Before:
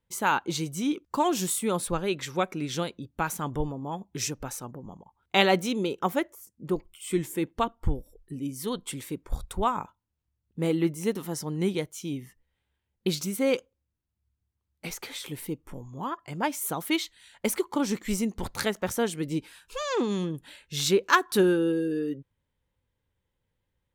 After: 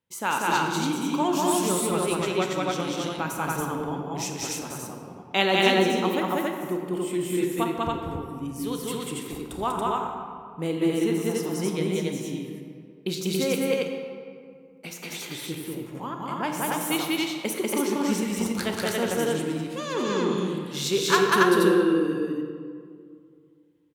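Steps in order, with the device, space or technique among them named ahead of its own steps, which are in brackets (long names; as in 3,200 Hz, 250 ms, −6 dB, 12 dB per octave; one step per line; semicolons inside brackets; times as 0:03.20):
stadium PA (high-pass filter 120 Hz 12 dB per octave; parametric band 2,800 Hz +3 dB 0.3 octaves; loudspeakers that aren't time-aligned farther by 66 metres −1 dB, 96 metres −1 dB; convolution reverb RT60 2.2 s, pre-delay 26 ms, DRR 4 dB)
level −2.5 dB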